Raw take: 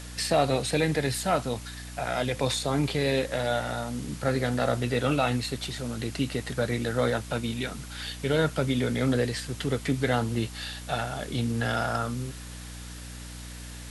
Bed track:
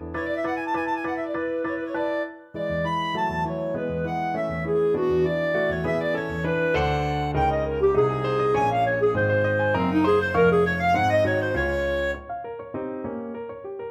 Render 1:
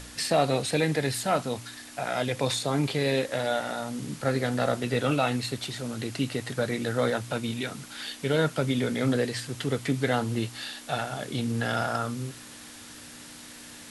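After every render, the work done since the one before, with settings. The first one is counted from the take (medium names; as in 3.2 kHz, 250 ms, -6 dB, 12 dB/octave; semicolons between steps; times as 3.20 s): de-hum 60 Hz, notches 3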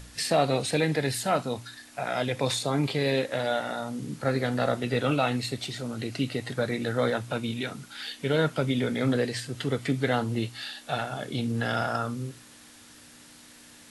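noise print and reduce 6 dB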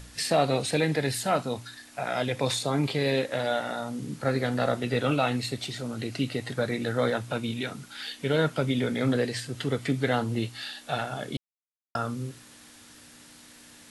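11.37–11.95 s: mute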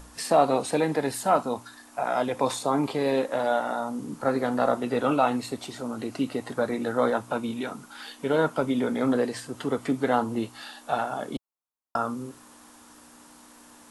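ten-band graphic EQ 125 Hz -10 dB, 250 Hz +4 dB, 1 kHz +10 dB, 2 kHz -6 dB, 4 kHz -6 dB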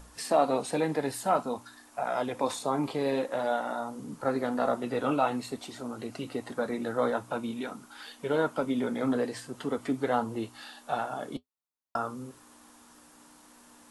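flange 0.49 Hz, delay 1.3 ms, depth 5.8 ms, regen -65%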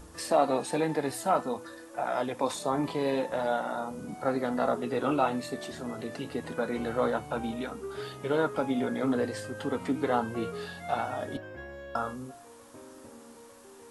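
add bed track -19 dB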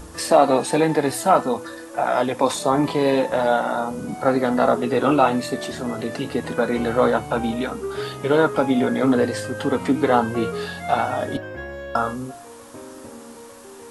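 trim +10 dB; peak limiter -3 dBFS, peak gain reduction 1 dB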